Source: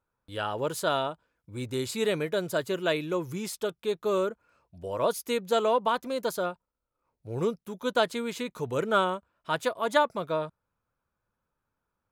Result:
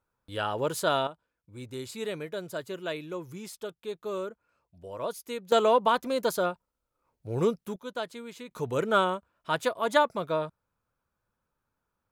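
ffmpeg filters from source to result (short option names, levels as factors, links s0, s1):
-af "asetnsamples=n=441:p=0,asendcmd='1.07 volume volume -7dB;5.52 volume volume 2.5dB;7.76 volume volume -9.5dB;8.51 volume volume 0.5dB',volume=1.12"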